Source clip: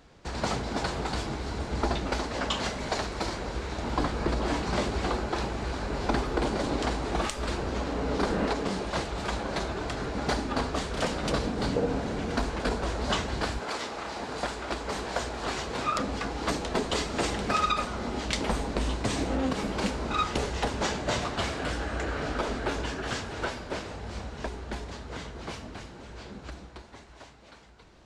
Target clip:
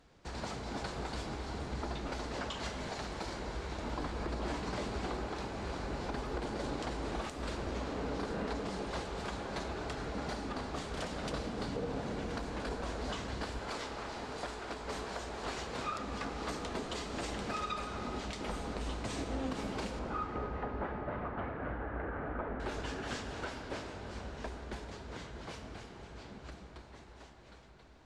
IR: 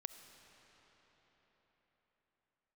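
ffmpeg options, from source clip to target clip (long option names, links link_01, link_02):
-filter_complex "[0:a]asettb=1/sr,asplit=3[link_01][link_02][link_03];[link_01]atrim=end=19.994[link_04];[link_02]atrim=start=19.99:end=22.6,asetpts=PTS-STARTPTS,afade=type=in:duration=0.004:curve=qsin,afade=type=out:start_time=2.606:duration=0.004:curve=qsin,lowpass=frequency=1800:width=0.5412,lowpass=frequency=1800:width=1.3066[link_05];[link_03]atrim=start=22.596[link_06];[link_04][link_05]acrossfade=duration=0.004:curve1=hsin:curve2=qsin[link_07];[link_07][link_06]acrossfade=duration=0.004:curve1=qsin:curve2=hsin,alimiter=limit=-20.5dB:level=0:latency=1:release=173[link_08];[1:a]atrim=start_sample=2205,asetrate=29106,aresample=44100[link_09];[link_08][link_09]afir=irnorm=-1:irlink=0,volume=-5dB"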